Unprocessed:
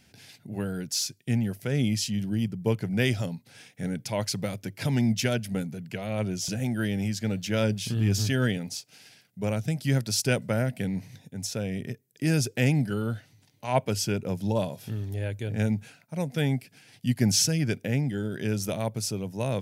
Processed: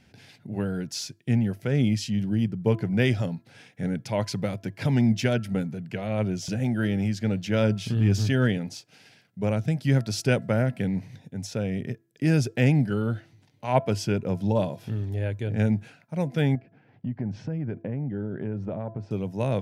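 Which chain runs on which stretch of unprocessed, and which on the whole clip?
16.55–19.11 LPF 1200 Hz + compressor 4:1, threshold -30 dBFS
whole clip: LPF 2300 Hz 6 dB/oct; de-hum 335.6 Hz, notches 5; gain +3 dB

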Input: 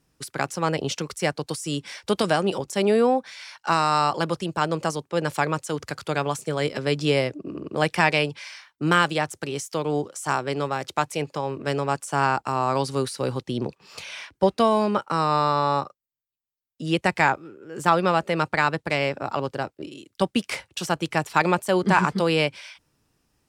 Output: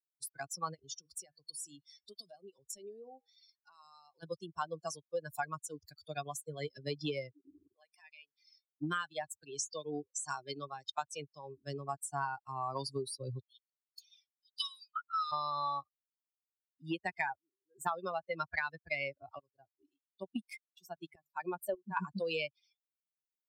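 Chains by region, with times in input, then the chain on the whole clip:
0.74–4.23 de-hum 159.9 Hz, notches 36 + compressor 3:1, threshold -30 dBFS
7.73–8.49 HPF 720 Hz 6 dB/oct + compressor 2:1, threshold -38 dBFS
9.49–11.57 LPF 8200 Hz + high shelf 2400 Hz +3.5 dB
13.42–15.32 elliptic high-pass 1300 Hz + high shelf 11000 Hz +7 dB + three-band expander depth 100%
19.39–21.97 notches 50/100/150 Hz + dynamic EQ 4700 Hz, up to -4 dB, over -39 dBFS, Q 0.83 + tremolo saw up 1.7 Hz, depth 80%
whole clip: per-bin expansion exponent 3; compressor 12:1, threshold -33 dBFS; low shelf 260 Hz -6.5 dB; gain +2 dB

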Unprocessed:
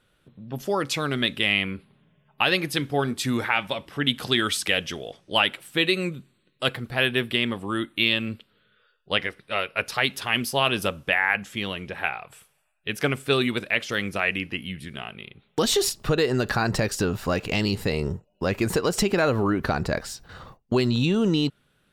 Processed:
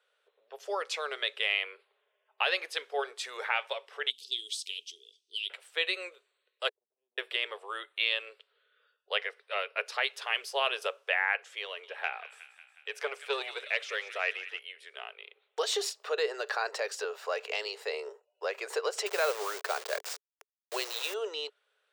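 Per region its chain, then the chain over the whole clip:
4.1–5.5 inverse Chebyshev band-stop 560–1700 Hz, stop band 50 dB + low shelf 150 Hz +11.5 dB
6.69–7.18 inverse Chebyshev low-pass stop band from 550 Hz, stop band 60 dB + compressor 2:1, threshold -44 dBFS
11.65–14.59 thin delay 0.182 s, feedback 65%, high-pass 2000 Hz, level -11 dB + core saturation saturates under 900 Hz
19.06–21.14 level-crossing sampler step -29 dBFS + high shelf 4700 Hz +11 dB
whole clip: Chebyshev high-pass 420 Hz, order 6; bell 12000 Hz -14.5 dB 0.49 oct; gain -6 dB

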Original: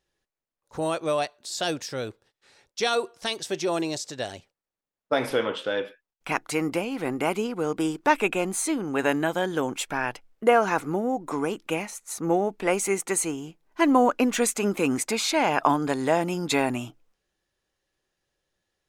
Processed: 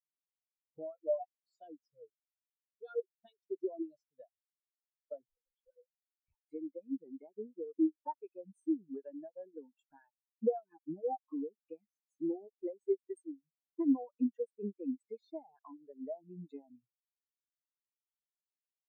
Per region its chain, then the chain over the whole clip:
1.91–2.99 bell 680 Hz -3.5 dB 0.27 oct + transient shaper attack -11 dB, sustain -6 dB + core saturation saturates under 1200 Hz
5.28–6.46 compressor 20:1, threshold -34 dBFS + LPC vocoder at 8 kHz pitch kept
10.7–11.49 transient shaper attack -5 dB, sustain -10 dB + comb 6.4 ms, depth 57%
whole clip: reverb removal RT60 1.2 s; compressor 6:1, threshold -31 dBFS; spectral expander 4:1; gain -2 dB

